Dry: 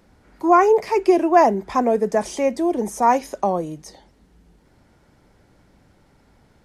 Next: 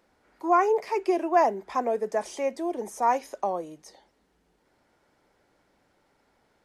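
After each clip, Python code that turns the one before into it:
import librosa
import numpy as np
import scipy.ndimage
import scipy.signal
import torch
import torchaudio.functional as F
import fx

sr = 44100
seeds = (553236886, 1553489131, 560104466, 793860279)

y = fx.bass_treble(x, sr, bass_db=-14, treble_db=-2)
y = y * 10.0 ** (-6.5 / 20.0)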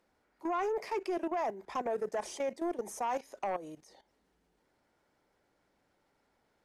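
y = fx.level_steps(x, sr, step_db=15)
y = fx.fold_sine(y, sr, drive_db=5, ceiling_db=-19.0)
y = y * 10.0 ** (-9.0 / 20.0)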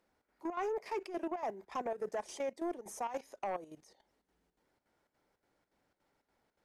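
y = fx.chopper(x, sr, hz=3.5, depth_pct=65, duty_pct=75)
y = y * 10.0 ** (-3.0 / 20.0)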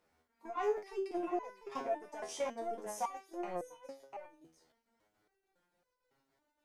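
y = x + 10.0 ** (-9.0 / 20.0) * np.pad(x, (int(697 * sr / 1000.0), 0))[:len(x)]
y = fx.resonator_held(y, sr, hz=3.6, low_hz=81.0, high_hz=500.0)
y = y * 10.0 ** (11.0 / 20.0)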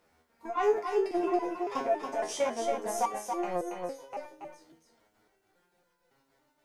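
y = x + 10.0 ** (-5.5 / 20.0) * np.pad(x, (int(279 * sr / 1000.0), 0))[:len(x)]
y = y * 10.0 ** (7.5 / 20.0)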